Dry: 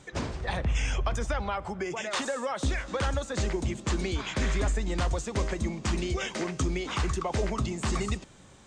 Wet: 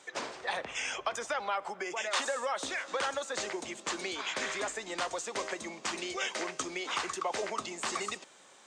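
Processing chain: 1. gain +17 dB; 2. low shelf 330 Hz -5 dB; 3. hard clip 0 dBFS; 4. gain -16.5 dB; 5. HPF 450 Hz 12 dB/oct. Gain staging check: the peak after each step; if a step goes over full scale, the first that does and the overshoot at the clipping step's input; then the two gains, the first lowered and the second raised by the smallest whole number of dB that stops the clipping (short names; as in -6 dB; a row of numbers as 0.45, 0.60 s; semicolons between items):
-1.0, -2.0, -2.0, -18.5, -17.0 dBFS; no overload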